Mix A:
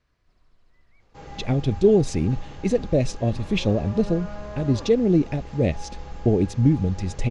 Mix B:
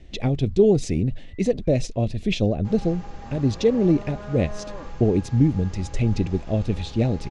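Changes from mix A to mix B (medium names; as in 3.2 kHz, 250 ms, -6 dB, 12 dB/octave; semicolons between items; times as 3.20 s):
speech: entry -1.25 s; second sound: entry +1.50 s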